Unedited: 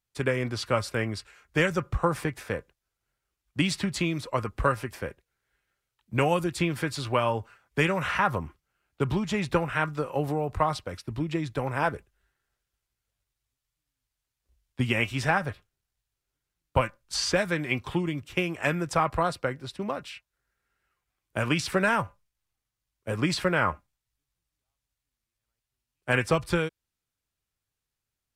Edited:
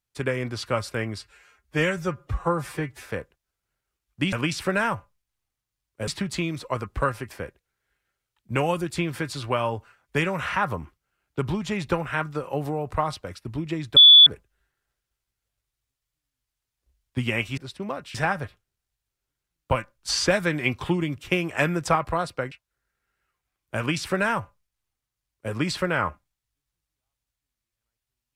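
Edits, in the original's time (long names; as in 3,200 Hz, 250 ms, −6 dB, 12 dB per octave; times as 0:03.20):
0:01.18–0:02.43: time-stretch 1.5×
0:11.59–0:11.89: beep over 3,450 Hz −7 dBFS
0:17.14–0:19.01: clip gain +3.5 dB
0:19.57–0:20.14: move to 0:15.20
0:21.40–0:23.15: duplicate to 0:03.70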